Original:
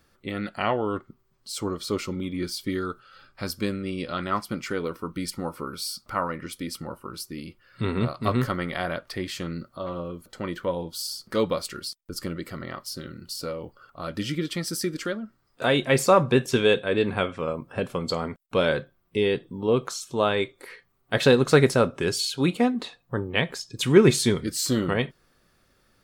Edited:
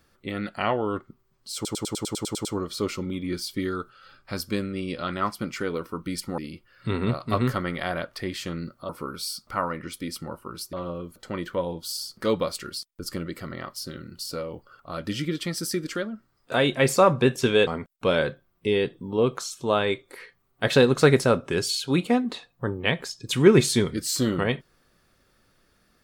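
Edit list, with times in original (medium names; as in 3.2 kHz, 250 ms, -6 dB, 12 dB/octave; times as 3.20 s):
1.55 s: stutter 0.10 s, 10 plays
5.48–7.32 s: move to 9.83 s
16.77–18.17 s: delete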